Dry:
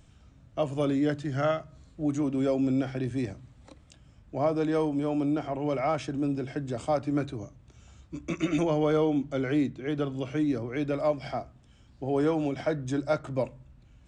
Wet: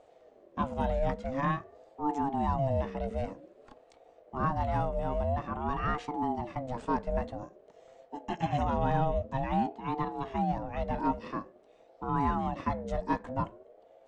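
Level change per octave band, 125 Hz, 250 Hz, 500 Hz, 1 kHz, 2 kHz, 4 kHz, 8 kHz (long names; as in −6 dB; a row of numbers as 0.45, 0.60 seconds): −1.5 dB, −7.0 dB, −6.0 dB, +5.0 dB, −2.5 dB, −7.0 dB, below −10 dB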